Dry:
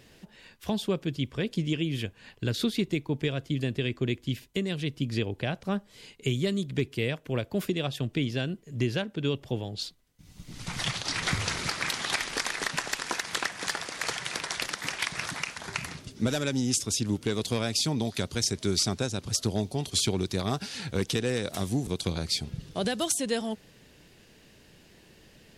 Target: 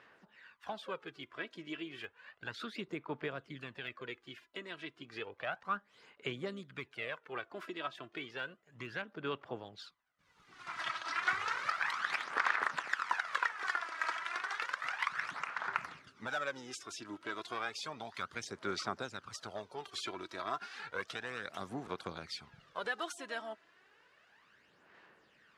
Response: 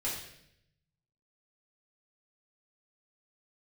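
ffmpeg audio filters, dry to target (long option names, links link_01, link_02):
-filter_complex "[0:a]asplit=2[link_01][link_02];[link_02]asetrate=58866,aresample=44100,atempo=0.749154,volume=-18dB[link_03];[link_01][link_03]amix=inputs=2:normalize=0,bandpass=frequency=1300:width_type=q:width=2.5:csg=0,aphaser=in_gain=1:out_gain=1:delay=3.1:decay=0.54:speed=0.32:type=sinusoidal,volume=1.5dB"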